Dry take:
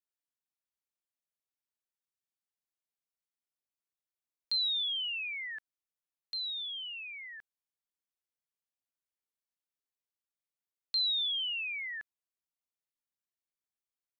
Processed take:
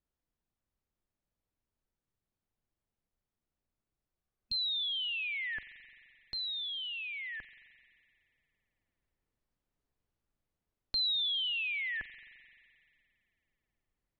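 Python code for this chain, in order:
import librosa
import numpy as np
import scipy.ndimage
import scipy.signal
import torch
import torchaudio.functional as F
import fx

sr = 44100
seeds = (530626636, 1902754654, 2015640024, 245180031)

p1 = fx.tilt_eq(x, sr, slope=-4.5)
p2 = fx.rev_spring(p1, sr, rt60_s=2.3, pass_ms=(43,), chirp_ms=60, drr_db=14.0)
p3 = fx.rider(p2, sr, range_db=3, speed_s=2.0)
p4 = p2 + F.gain(torch.from_numpy(p3), 2.5).numpy()
y = fx.spec_repair(p4, sr, seeds[0], start_s=4.25, length_s=0.69, low_hz=220.0, high_hz=2600.0, source='both')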